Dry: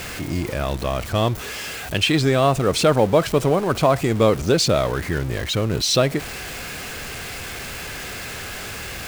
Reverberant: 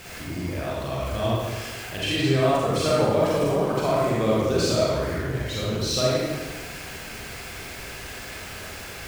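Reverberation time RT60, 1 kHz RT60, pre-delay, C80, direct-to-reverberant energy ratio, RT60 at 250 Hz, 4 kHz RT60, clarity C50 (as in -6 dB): 1.3 s, 1.3 s, 36 ms, 0.0 dB, -7.0 dB, 1.4 s, 1.0 s, -3.5 dB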